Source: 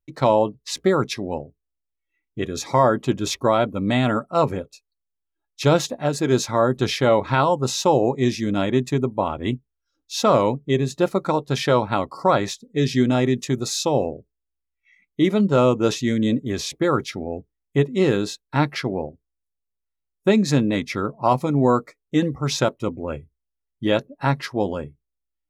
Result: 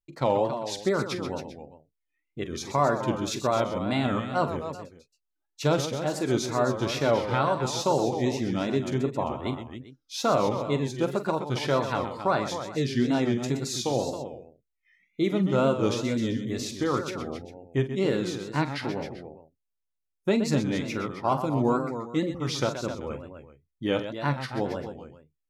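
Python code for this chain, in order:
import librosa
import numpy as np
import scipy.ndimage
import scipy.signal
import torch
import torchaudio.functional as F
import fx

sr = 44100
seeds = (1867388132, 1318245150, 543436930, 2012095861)

y = fx.echo_multitap(x, sr, ms=(44, 126, 268, 395), db=(-12.0, -10.0, -10.0, -18.0))
y = fx.wow_flutter(y, sr, seeds[0], rate_hz=2.1, depth_cents=120.0)
y = y * librosa.db_to_amplitude(-7.0)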